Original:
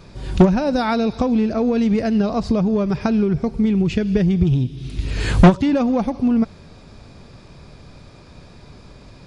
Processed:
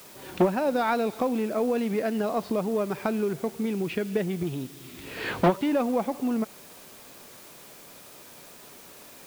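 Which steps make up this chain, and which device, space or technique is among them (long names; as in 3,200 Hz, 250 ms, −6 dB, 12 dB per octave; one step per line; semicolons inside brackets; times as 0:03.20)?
tape answering machine (band-pass filter 340–3,000 Hz; soft clipping −7 dBFS, distortion −20 dB; tape wow and flutter; white noise bed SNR 21 dB)
level −3 dB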